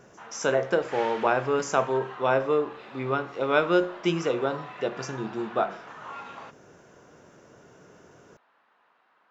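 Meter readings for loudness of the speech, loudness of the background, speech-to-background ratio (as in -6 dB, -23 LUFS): -27.0 LUFS, -42.0 LUFS, 15.0 dB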